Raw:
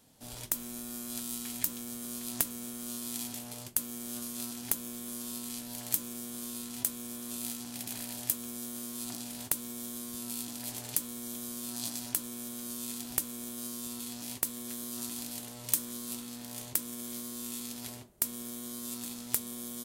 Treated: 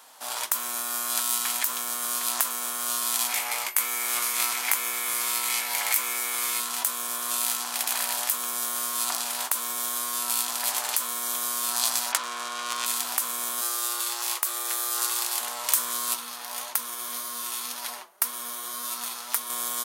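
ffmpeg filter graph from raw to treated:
-filter_complex "[0:a]asettb=1/sr,asplit=3[a][b][c];[a]atrim=end=3.294[d];[b]atrim=start=3.29:end=6.6,asetpts=PTS-STARTPTS,afade=t=in:d=0.004:c=qsin,afade=t=out:st=3.306:d=0.004:c=qsin,equalizer=f=2.2k:w=4.2:g=13.5,aeval=exprs='val(0)+0.00224*sin(2*PI*13000*n/s)':c=same,asplit=2[e][f];[f]adelay=19,volume=-8dB[g];[e][g]amix=inputs=2:normalize=0,atrim=end_sample=145971[h];[c]atrim=start=6.596[i];[d][h]acrossfade=d=0.004:c1=hsin:c2=qsin[j];[j][i]acrossfade=d=0.004:c1=qsin:c2=hsin,asettb=1/sr,asplit=3[k][l][m];[k]atrim=end=12.124[n];[l]atrim=start=12.12:end=12.86,asetpts=PTS-STARTPTS,afade=t=in:d=0.004:c=qsin,afade=t=out:st=0.736:d=0.004:c=qsin,asplit=2[o][p];[p]highpass=f=720:p=1,volume=9dB,asoftclip=type=tanh:threshold=-7.5dB[q];[o][q]amix=inputs=2:normalize=0,lowpass=f=3.4k:p=1,volume=-6dB,highshelf=f=3.6k:g=10.5,adynamicsmooth=sensitivity=4:basefreq=2.5k[r];[m]atrim=start=12.856[s];[n][r]acrossfade=d=0.004:c1=hsin:c2=qsin[t];[t][s]acrossfade=d=0.004:c1=qsin:c2=hsin,asettb=1/sr,asplit=3[u][v][w];[u]atrim=end=13.614[x];[v]atrim=start=13.61:end=15.41,asetpts=PTS-STARTPTS,afade=t=in:d=0.004:c=qsin,afade=t=out:st=1.796:d=0.004:c=qsin,highpass=f=170:w=0.5412,highpass=f=170:w=1.3066,lowshelf=f=460:g=-7.5,afreqshift=110[y];[w]atrim=start=15.406[z];[x][y]acrossfade=d=0.004:c1=hsin:c2=qsin[aa];[aa][z]acrossfade=d=0.004:c1=qsin:c2=hsin,asettb=1/sr,asplit=3[ab][ac][ad];[ab]atrim=end=16.144[ae];[ac]atrim=start=16.14:end=19.5,asetpts=PTS-STARTPTS,afade=t=in:d=0.004:c=qsin,afade=t=out:st=3.356:d=0.004:c=qsin,bandreject=f=7.6k:w=7,flanger=delay=2.9:depth=3.2:regen=39:speed=1.8:shape=triangular[af];[ad]atrim=start=19.496[ag];[ae][af]acrossfade=d=0.004:c1=hsin:c2=qsin[ah];[ah][ag]acrossfade=d=0.004:c1=qsin:c2=hsin,highpass=810,equalizer=f=1.1k:w=1:g=11,alimiter=level_in=15.5dB:limit=-1dB:release=50:level=0:latency=1,volume=-3dB"

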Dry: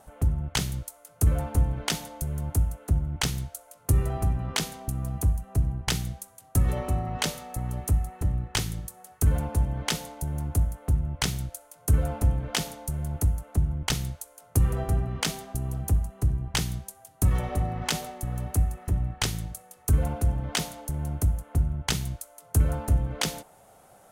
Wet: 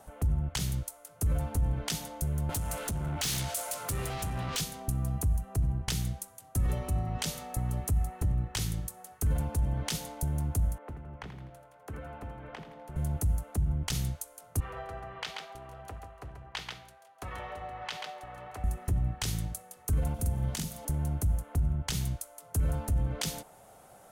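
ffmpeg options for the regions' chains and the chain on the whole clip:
-filter_complex "[0:a]asettb=1/sr,asplit=3[a][b][c];[a]atrim=end=2.494[d];[b]atrim=start=2.49:end=4.61,asetpts=PTS-STARTPTS,afade=t=in:d=0.004:c=qsin,afade=t=out:st=2.116:d=0.004:c=qsin,acompressor=threshold=-36dB:ratio=5:attack=3.2:release=140:knee=1:detection=peak,asplit=2[e][f];[f]highpass=f=720:p=1,volume=33dB,asoftclip=type=tanh:threshold=-20.5dB[g];[e][g]amix=inputs=2:normalize=0,lowpass=f=7.7k:p=1,volume=-6dB[h];[c]atrim=start=4.606[i];[d][h]acrossfade=d=0.004:c1=hsin:c2=qsin[j];[j][i]acrossfade=d=0.004:c1=qsin:c2=hsin,asettb=1/sr,asplit=3[k][l][m];[k]atrim=end=10.784[n];[l]atrim=start=10.78:end=12.96,asetpts=PTS-STARTPTS,afade=t=in:d=0.004:c=qsin,afade=t=out:st=2.176:d=0.004:c=qsin,acrossover=split=240 2900:gain=0.2 1 0.0631[o][p][q];[o][p][q]amix=inputs=3:normalize=0,acrossover=split=150|1200[r][s][t];[r]acompressor=threshold=-41dB:ratio=4[u];[s]acompressor=threshold=-46dB:ratio=4[v];[t]acompressor=threshold=-51dB:ratio=4[w];[u][v][w]amix=inputs=3:normalize=0,aecho=1:1:83|166|249|332|415:0.282|0.135|0.0649|0.0312|0.015,atrim=end_sample=96138[x];[m]atrim=start=12.956[y];[n][x]acrossfade=d=0.004:c1=hsin:c2=qsin[z];[z][y]acrossfade=d=0.004:c1=qsin:c2=hsin,asettb=1/sr,asplit=3[aa][ab][ac];[aa]atrim=end=14.604[ad];[ab]atrim=start=14.6:end=18.64,asetpts=PTS-STARTPTS,afade=t=in:d=0.004:c=qsin,afade=t=out:st=4.036:d=0.004:c=qsin,acrossover=split=510 3800:gain=0.0794 1 0.0708[ae][af][ag];[ae][af][ag]amix=inputs=3:normalize=0,aecho=1:1:136:0.422,atrim=end_sample=178164[ah];[ac]atrim=start=18.636[ai];[ad][ah]acrossfade=d=0.004:c1=hsin:c2=qsin[aj];[aj][ai]acrossfade=d=0.004:c1=qsin:c2=hsin,asettb=1/sr,asplit=3[ak][al][am];[ak]atrim=end=20.144[an];[al]atrim=start=20.14:end=20.85,asetpts=PTS-STARTPTS,afade=t=in:d=0.004:c=qsin,afade=t=out:st=0.706:d=0.004:c=qsin,aemphasis=mode=production:type=cd,acrossover=split=270|3800[ao][ap][aq];[ao]acompressor=threshold=-27dB:ratio=4[ar];[ap]acompressor=threshold=-45dB:ratio=4[as];[aq]acompressor=threshold=-40dB:ratio=4[at];[ar][as][at]amix=inputs=3:normalize=0,asplit=2[au][av];[av]adelay=46,volume=-2.5dB[aw];[au][aw]amix=inputs=2:normalize=0,atrim=end_sample=31311[ax];[am]atrim=start=20.846[ay];[an][ax]acrossfade=d=0.004:c1=hsin:c2=qsin[az];[az][ay]acrossfade=d=0.004:c1=qsin:c2=hsin,alimiter=limit=-20.5dB:level=0:latency=1:release=29,acrossover=split=180|3000[ba][bb][bc];[bb]acompressor=threshold=-38dB:ratio=6[bd];[ba][bd][bc]amix=inputs=3:normalize=0"

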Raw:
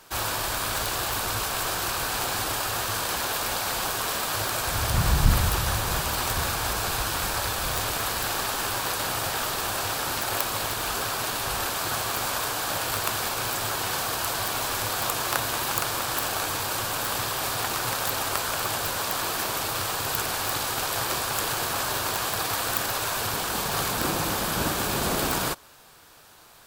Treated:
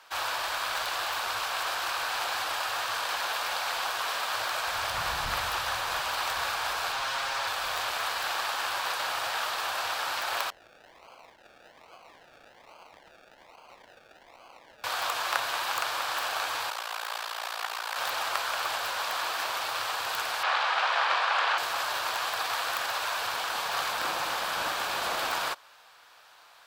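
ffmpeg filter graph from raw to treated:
-filter_complex "[0:a]asettb=1/sr,asplit=3[a][b][c];[a]atrim=end=6.924[d];[b]atrim=start=6.92:end=7.47,asetpts=PTS-STARTPTS,afade=t=in:d=0.004:c=qsin,afade=t=out:st=0.546:d=0.004:c=qsin,aecho=1:1:7.4:0.99,atrim=end_sample=24255,acrossover=split=8200[e][f];[f]acompressor=threshold=-38dB:ratio=4:attack=1:release=60[g];[e][g]amix=inputs=2:normalize=0,asoftclip=type=hard:threshold=-25.5dB[h];[c]atrim=start=7.466[i];[d][h]acrossfade=d=0.004:c1=hsin:c2=qsin[j];[j][i]acrossfade=d=0.004:c1=qsin:c2=hsin,asettb=1/sr,asplit=3[k][l][m];[k]atrim=end=10.504[n];[l]atrim=start=10.5:end=14.84,asetpts=PTS-STARTPTS,afade=t=in:d=0.004:c=qsin,afade=t=out:st=4.336:d=0.004:c=qsin,lowpass=f=2.2k:w=0.5412,lowpass=f=2.2k:w=1.3066,aderivative,acrusher=samples=34:mix=1:aa=0.000001:lfo=1:lforange=20.4:lforate=1.2[o];[m]atrim=start=14.836[p];[n][o]acrossfade=d=0.004:c1=hsin:c2=qsin[q];[q][p]acrossfade=d=0.004:c1=qsin:c2=hsin,asettb=1/sr,asplit=3[r][s][t];[r]atrim=end=16.704[u];[s]atrim=start=16.7:end=17.96,asetpts=PTS-STARTPTS,afade=t=in:d=0.004:c=qsin,afade=t=out:st=1.256:d=0.004:c=qsin,highpass=380,tremolo=f=57:d=0.857[v];[t]atrim=start=17.956[w];[u][v]acrossfade=d=0.004:c1=hsin:c2=qsin[x];[x][w]acrossfade=d=0.004:c1=qsin:c2=hsin,asettb=1/sr,asplit=3[y][z][aa];[y]atrim=end=20.434[ab];[z]atrim=start=20.43:end=21.58,asetpts=PTS-STARTPTS,afade=t=in:d=0.004:c=qsin,afade=t=out:st=1.146:d=0.004:c=qsin,acontrast=64,highpass=570,lowpass=3.1k[ac];[aa]atrim=start=21.576[ad];[ab][ac]acrossfade=d=0.004:c1=hsin:c2=qsin[ae];[ae][ad]acrossfade=d=0.004:c1=qsin:c2=hsin,acrossover=split=560 5000:gain=0.0794 1 0.224[af][ag][ah];[af][ag][ah]amix=inputs=3:normalize=0,bandreject=f=410:w=12"

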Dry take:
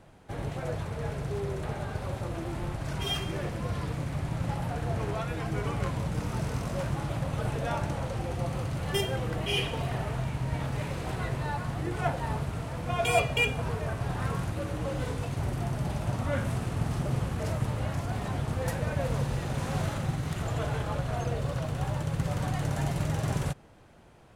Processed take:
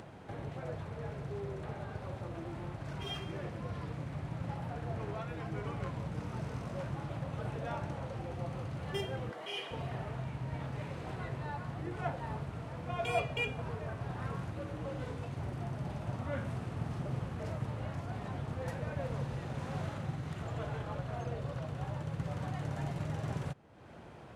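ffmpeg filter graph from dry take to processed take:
-filter_complex "[0:a]asettb=1/sr,asplit=3[a][b][c];[a]atrim=end=9.314[d];[b]atrim=start=9.31:end=9.71,asetpts=PTS-STARTPTS,afade=t=in:d=0.004:c=qsin,afade=t=out:st=0.396:d=0.004:c=qsin,highpass=480,bandreject=f=2.6k:w=9.9[e];[c]atrim=start=9.706[f];[d][e]acrossfade=d=0.004:c1=hsin:c2=qsin[g];[g][f]acrossfade=d=0.004:c1=qsin:c2=hsin,highpass=74,aemphasis=mode=reproduction:type=50kf,acompressor=mode=upward:threshold=-32dB:ratio=2.5,volume=-7dB"

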